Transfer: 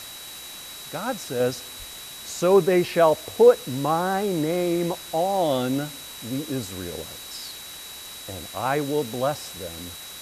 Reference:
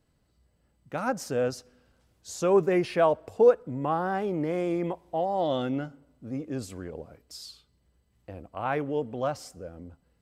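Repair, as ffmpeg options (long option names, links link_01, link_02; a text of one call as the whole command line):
ffmpeg -i in.wav -filter_complex "[0:a]bandreject=frequency=3900:width=30,asplit=3[link_01][link_02][link_03];[link_01]afade=type=out:start_time=1.78:duration=0.02[link_04];[link_02]highpass=frequency=140:width=0.5412,highpass=frequency=140:width=1.3066,afade=type=in:start_time=1.78:duration=0.02,afade=type=out:start_time=1.9:duration=0.02[link_05];[link_03]afade=type=in:start_time=1.9:duration=0.02[link_06];[link_04][link_05][link_06]amix=inputs=3:normalize=0,afwtdn=0.011,asetnsamples=nb_out_samples=441:pad=0,asendcmd='1.4 volume volume -4.5dB',volume=0dB" out.wav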